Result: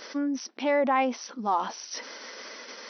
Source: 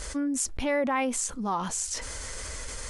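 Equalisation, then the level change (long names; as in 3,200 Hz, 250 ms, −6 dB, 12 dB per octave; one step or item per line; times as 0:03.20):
dynamic equaliser 770 Hz, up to +6 dB, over −43 dBFS, Q 1.7
linear-phase brick-wall band-pass 200–6,100 Hz
0.0 dB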